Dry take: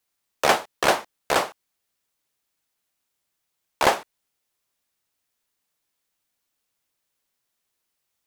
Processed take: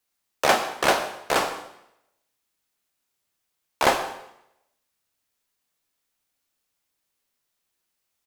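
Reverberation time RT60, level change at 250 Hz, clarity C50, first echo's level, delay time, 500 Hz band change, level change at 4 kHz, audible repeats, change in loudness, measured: 0.80 s, +0.5 dB, 8.5 dB, -20.5 dB, 155 ms, -0.5 dB, 0.0 dB, 1, 0.0 dB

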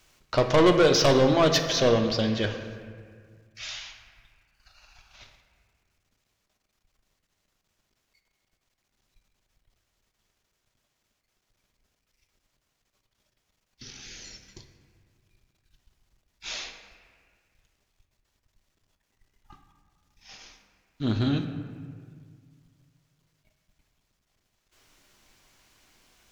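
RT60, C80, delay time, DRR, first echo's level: 1.9 s, 9.0 dB, no echo, 5.0 dB, no echo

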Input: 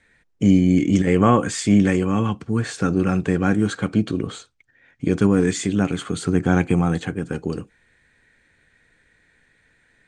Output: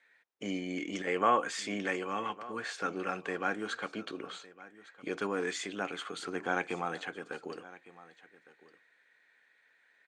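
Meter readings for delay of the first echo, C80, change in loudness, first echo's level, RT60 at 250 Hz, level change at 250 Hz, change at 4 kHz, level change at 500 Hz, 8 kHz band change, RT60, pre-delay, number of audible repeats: 1158 ms, no reverb, -15.0 dB, -19.0 dB, no reverb, -21.5 dB, -7.5 dB, -12.0 dB, -13.5 dB, no reverb, no reverb, 1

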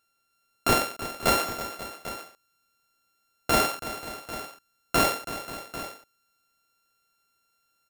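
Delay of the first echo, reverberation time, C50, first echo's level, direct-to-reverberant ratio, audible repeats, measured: 328 ms, no reverb, no reverb, -13.0 dB, no reverb, 3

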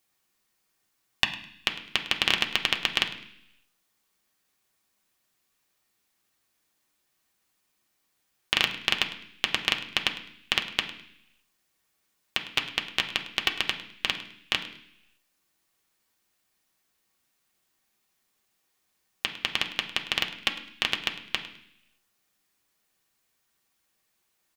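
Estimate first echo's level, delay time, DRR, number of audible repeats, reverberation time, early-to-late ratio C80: -16.5 dB, 104 ms, 2.0 dB, 1, 0.70 s, 12.5 dB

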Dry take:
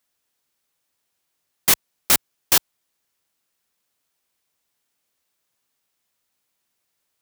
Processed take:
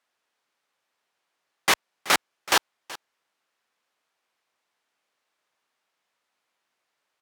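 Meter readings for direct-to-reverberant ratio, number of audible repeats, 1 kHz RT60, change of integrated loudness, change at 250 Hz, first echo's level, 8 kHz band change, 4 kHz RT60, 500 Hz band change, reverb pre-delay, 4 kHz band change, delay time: no reverb, 1, no reverb, -5.0 dB, -2.0 dB, -18.5 dB, -8.0 dB, no reverb, +2.0 dB, no reverb, -1.5 dB, 377 ms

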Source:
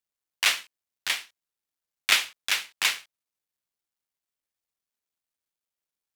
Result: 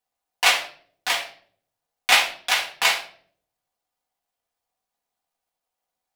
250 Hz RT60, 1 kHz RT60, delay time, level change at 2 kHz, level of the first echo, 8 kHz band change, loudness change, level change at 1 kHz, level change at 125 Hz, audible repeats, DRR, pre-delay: 0.80 s, 0.40 s, no echo, +5.5 dB, no echo, +3.0 dB, +5.0 dB, +11.5 dB, no reading, no echo, -4.0 dB, 4 ms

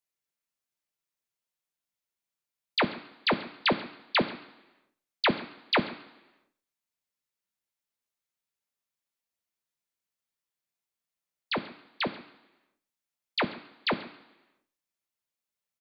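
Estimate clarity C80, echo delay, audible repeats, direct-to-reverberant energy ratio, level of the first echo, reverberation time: 14.5 dB, 137 ms, 1, 5.0 dB, -20.5 dB, 1.0 s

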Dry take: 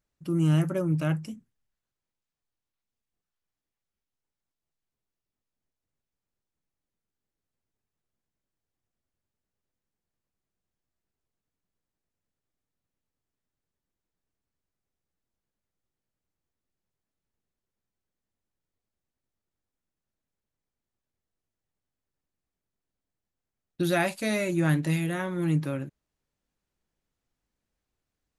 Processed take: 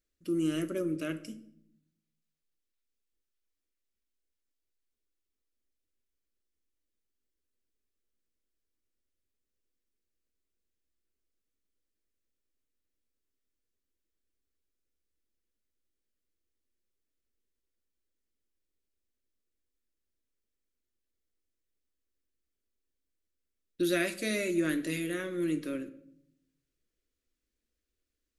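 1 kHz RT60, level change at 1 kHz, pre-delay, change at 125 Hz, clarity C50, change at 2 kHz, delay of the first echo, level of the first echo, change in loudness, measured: 0.60 s, -11.5 dB, 6 ms, -16.5 dB, 15.0 dB, -3.5 dB, no echo, no echo, -5.0 dB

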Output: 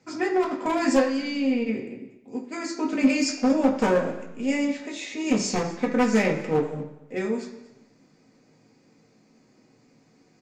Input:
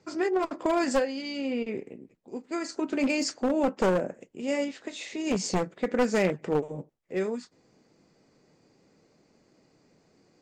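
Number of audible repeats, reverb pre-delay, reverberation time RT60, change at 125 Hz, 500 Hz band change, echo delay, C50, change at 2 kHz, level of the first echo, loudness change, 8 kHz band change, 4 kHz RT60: 1, 3 ms, 1.0 s, +3.0 dB, +2.0 dB, 236 ms, 8.5 dB, +4.5 dB, -20.0 dB, +4.0 dB, +3.5 dB, 0.95 s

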